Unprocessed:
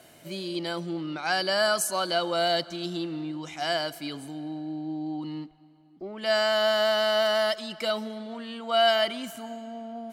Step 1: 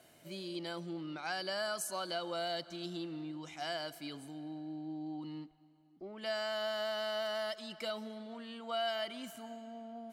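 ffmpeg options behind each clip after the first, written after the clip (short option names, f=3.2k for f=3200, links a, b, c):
-af "acompressor=threshold=-27dB:ratio=2,volume=-9dB"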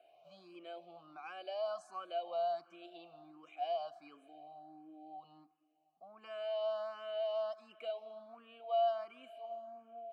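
-filter_complex "[0:a]asplit=3[a][b][c];[a]bandpass=f=730:t=q:w=8,volume=0dB[d];[b]bandpass=f=1.09k:t=q:w=8,volume=-6dB[e];[c]bandpass=f=2.44k:t=q:w=8,volume=-9dB[f];[d][e][f]amix=inputs=3:normalize=0,asplit=2[g][h];[h]afreqshift=1.4[i];[g][i]amix=inputs=2:normalize=1,volume=8dB"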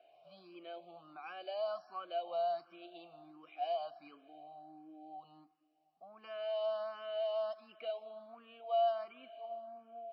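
-af "volume=1dB" -ar 16000 -c:a libmp3lame -b:a 24k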